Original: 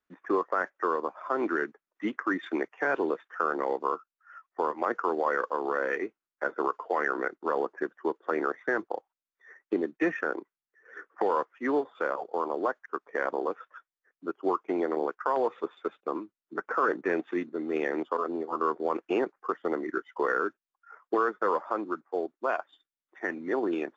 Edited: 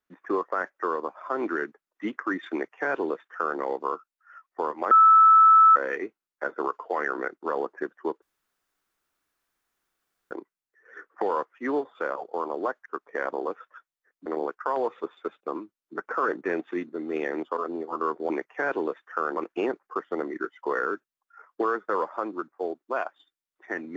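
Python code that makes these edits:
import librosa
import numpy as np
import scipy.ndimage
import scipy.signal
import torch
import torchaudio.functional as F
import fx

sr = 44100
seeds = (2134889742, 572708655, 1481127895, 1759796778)

y = fx.edit(x, sr, fx.duplicate(start_s=2.53, length_s=1.07, to_s=18.9),
    fx.bleep(start_s=4.91, length_s=0.85, hz=1310.0, db=-11.5),
    fx.room_tone_fill(start_s=8.22, length_s=2.09),
    fx.cut(start_s=14.26, length_s=0.6), tone=tone)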